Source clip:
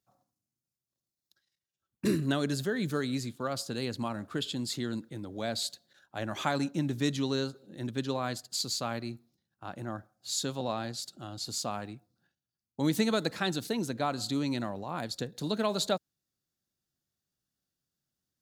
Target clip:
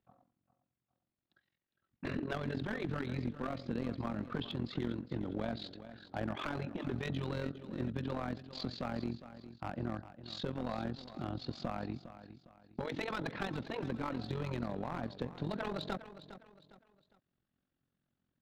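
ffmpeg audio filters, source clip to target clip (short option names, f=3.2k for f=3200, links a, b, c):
-filter_complex "[0:a]lowpass=f=3.5k:w=0.5412,lowpass=f=3.5k:w=1.3066,aemphasis=mode=reproduction:type=75kf,afftfilt=real='re*lt(hypot(re,im),0.2)':imag='im*lt(hypot(re,im),0.2)':win_size=1024:overlap=0.75,equalizer=f=250:t=o:w=0.46:g=4.5,acompressor=threshold=-41dB:ratio=2.5,tremolo=f=44:d=0.788,aeval=exprs='clip(val(0),-1,0.0075)':c=same,asplit=2[a][b];[b]aecho=0:1:407|814|1221:0.211|0.074|0.0259[c];[a][c]amix=inputs=2:normalize=0,volume=8.5dB"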